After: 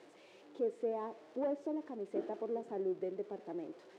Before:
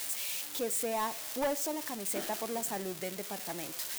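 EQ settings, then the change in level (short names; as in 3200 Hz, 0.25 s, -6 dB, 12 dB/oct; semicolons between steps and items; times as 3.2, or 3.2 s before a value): band-pass 380 Hz, Q 2.8; air absorption 71 m; +5.0 dB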